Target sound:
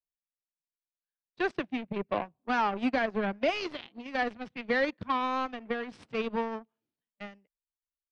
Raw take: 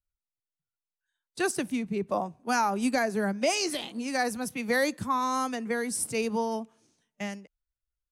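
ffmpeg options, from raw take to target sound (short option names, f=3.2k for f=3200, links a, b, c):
-af "aeval=exprs='0.158*(cos(1*acos(clip(val(0)/0.158,-1,1)))-cos(1*PI/2))+0.02*(cos(7*acos(clip(val(0)/0.158,-1,1)))-cos(7*PI/2))':c=same,lowpass=f=3.6k:w=0.5412,lowpass=f=3.6k:w=1.3066,volume=-1.5dB"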